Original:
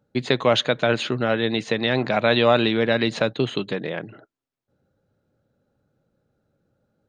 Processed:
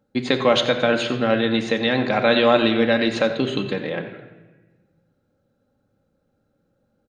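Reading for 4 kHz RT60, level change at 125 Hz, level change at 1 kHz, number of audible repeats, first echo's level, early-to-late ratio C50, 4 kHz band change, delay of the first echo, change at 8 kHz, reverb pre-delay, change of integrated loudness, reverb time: 0.90 s, -2.0 dB, +1.5 dB, 1, -15.0 dB, 8.5 dB, +1.0 dB, 89 ms, no reading, 4 ms, +1.5 dB, 1.2 s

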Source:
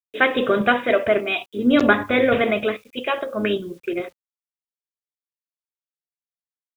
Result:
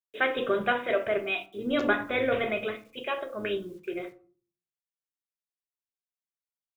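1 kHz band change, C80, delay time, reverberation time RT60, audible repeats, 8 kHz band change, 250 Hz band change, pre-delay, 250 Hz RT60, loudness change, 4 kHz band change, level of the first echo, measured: -8.5 dB, 21.5 dB, no echo, 0.45 s, no echo, no reading, -12.0 dB, 5 ms, 0.55 s, -9.0 dB, -8.0 dB, no echo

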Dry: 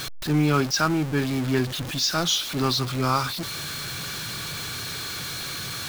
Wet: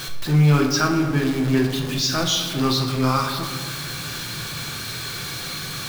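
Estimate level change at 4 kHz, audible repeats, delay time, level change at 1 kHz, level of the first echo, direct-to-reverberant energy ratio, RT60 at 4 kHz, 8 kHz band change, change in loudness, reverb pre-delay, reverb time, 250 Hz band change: +1.5 dB, no echo, no echo, +2.0 dB, no echo, 1.5 dB, 0.95 s, +1.5 dB, +3.5 dB, 6 ms, 1.5 s, +4.5 dB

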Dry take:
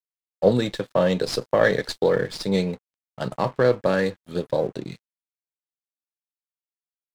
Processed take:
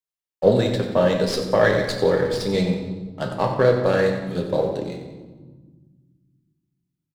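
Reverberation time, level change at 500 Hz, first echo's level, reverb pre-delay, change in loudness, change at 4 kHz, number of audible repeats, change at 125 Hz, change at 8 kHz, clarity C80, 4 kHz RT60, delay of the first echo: 1.4 s, +2.5 dB, -11.5 dB, 8 ms, +2.0 dB, +2.0 dB, 2, +4.0 dB, no reading, 6.5 dB, 0.90 s, 91 ms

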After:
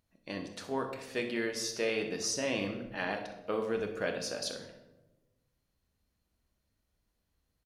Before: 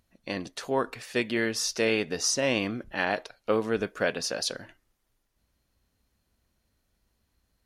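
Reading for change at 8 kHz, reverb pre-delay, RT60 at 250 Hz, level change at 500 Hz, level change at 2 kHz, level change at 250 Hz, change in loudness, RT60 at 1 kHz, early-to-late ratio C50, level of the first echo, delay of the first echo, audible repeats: -7.0 dB, 5 ms, 1.5 s, -5.5 dB, -7.0 dB, -6.0 dB, -6.5 dB, 0.90 s, 7.0 dB, -13.0 dB, 62 ms, 1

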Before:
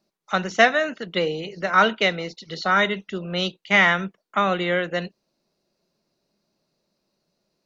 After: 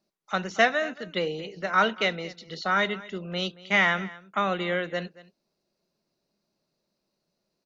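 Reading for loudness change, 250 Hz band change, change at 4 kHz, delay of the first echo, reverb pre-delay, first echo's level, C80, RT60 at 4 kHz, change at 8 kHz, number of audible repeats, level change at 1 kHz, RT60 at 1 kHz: -5.0 dB, -5.0 dB, -5.0 dB, 228 ms, no reverb, -19.5 dB, no reverb, no reverb, no reading, 1, -5.0 dB, no reverb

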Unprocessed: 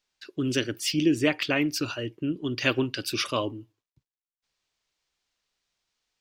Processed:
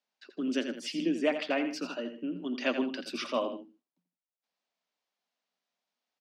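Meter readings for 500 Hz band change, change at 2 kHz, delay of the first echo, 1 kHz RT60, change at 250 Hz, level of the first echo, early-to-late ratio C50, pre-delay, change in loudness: -2.5 dB, -7.0 dB, 84 ms, no reverb, -5.0 dB, -9.5 dB, no reverb, no reverb, -5.5 dB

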